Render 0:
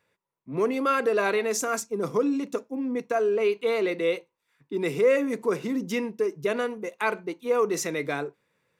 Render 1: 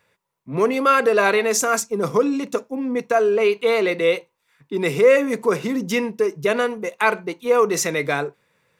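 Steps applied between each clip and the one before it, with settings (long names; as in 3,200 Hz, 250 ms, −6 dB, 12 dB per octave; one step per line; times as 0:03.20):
parametric band 310 Hz −5.5 dB 0.86 octaves
level +8.5 dB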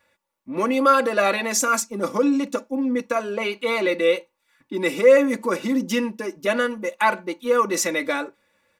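comb filter 3.5 ms, depth 96%
level −3.5 dB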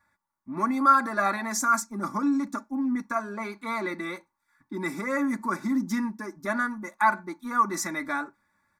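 high-shelf EQ 4,100 Hz −7.5 dB
phaser with its sweep stopped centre 1,200 Hz, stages 4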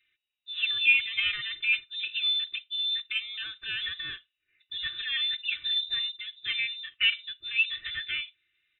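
voice inversion scrambler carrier 3,800 Hz
level −3 dB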